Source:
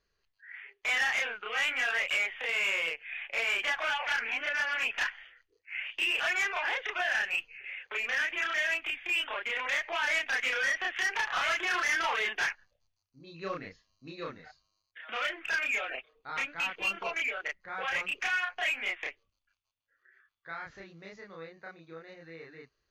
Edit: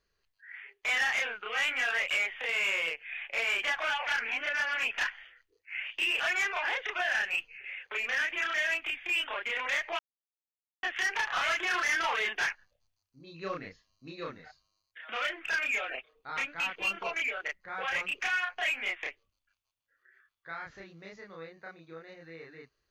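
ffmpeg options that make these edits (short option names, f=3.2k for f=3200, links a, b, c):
-filter_complex "[0:a]asplit=3[a][b][c];[a]atrim=end=9.99,asetpts=PTS-STARTPTS,afade=t=out:st=9.986:d=0.004:c=hsin[d];[b]atrim=start=9.99:end=10.83,asetpts=PTS-STARTPTS,volume=0[e];[c]atrim=start=10.83,asetpts=PTS-STARTPTS,afade=t=in:d=0.004:c=hsin[f];[d][e][f]concat=n=3:v=0:a=1"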